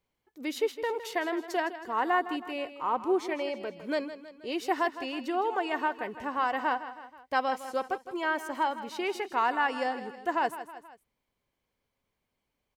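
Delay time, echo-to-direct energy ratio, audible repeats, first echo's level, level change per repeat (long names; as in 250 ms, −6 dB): 160 ms, −11.5 dB, 3, −13.0 dB, −5.5 dB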